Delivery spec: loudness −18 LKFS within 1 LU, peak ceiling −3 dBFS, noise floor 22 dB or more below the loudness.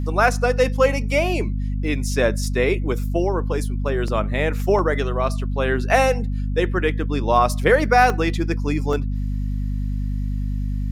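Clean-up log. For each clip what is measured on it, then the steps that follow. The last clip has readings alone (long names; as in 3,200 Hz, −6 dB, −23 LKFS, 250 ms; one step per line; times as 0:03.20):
number of dropouts 4; longest dropout 1.4 ms; mains hum 50 Hz; hum harmonics up to 250 Hz; level of the hum −21 dBFS; integrated loudness −21.0 LKFS; sample peak −3.0 dBFS; target loudness −18.0 LKFS
→ repair the gap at 0:04.08/0:04.79/0:08.10/0:08.93, 1.4 ms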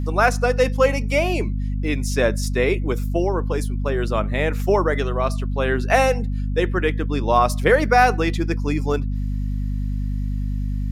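number of dropouts 0; mains hum 50 Hz; hum harmonics up to 250 Hz; level of the hum −21 dBFS
→ hum removal 50 Hz, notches 5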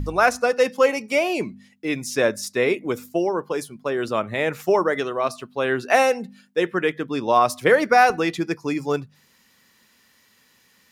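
mains hum none found; integrated loudness −22.0 LKFS; sample peak −4.0 dBFS; target loudness −18.0 LKFS
→ level +4 dB
brickwall limiter −3 dBFS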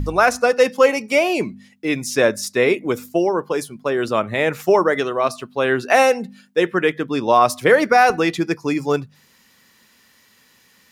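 integrated loudness −18.5 LKFS; sample peak −3.0 dBFS; background noise floor −56 dBFS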